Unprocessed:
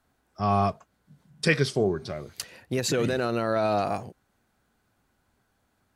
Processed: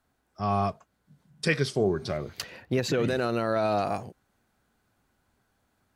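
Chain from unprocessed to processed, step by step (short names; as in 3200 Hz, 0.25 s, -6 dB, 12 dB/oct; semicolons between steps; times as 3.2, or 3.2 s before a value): vocal rider within 5 dB 0.5 s; 2.17–3.08 bell 9500 Hz -12 dB 1.3 oct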